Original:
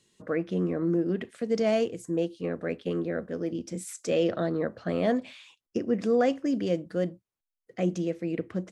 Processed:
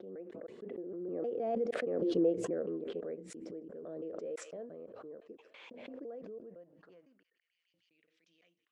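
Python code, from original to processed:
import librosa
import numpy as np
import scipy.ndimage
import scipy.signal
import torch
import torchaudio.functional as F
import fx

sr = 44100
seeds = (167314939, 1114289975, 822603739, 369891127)

y = fx.block_reorder(x, sr, ms=162.0, group=4)
y = fx.doppler_pass(y, sr, speed_mps=15, closest_m=5.1, pass_at_s=2.29)
y = fx.high_shelf(y, sr, hz=9100.0, db=-8.5)
y = fx.echo_wet_highpass(y, sr, ms=153, feedback_pct=65, hz=3000.0, wet_db=-22)
y = fx.filter_sweep_bandpass(y, sr, from_hz=460.0, to_hz=3200.0, start_s=6.31, end_s=7.79, q=1.9)
y = fx.pre_swell(y, sr, db_per_s=24.0)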